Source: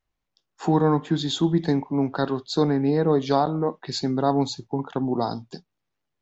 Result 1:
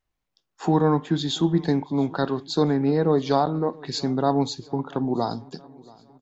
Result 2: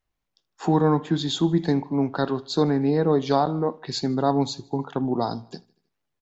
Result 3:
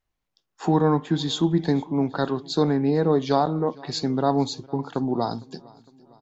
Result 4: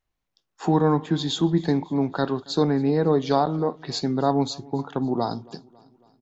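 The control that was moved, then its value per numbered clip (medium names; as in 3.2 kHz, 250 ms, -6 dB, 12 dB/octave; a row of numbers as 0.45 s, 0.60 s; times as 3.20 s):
feedback delay, time: 681 ms, 78 ms, 457 ms, 275 ms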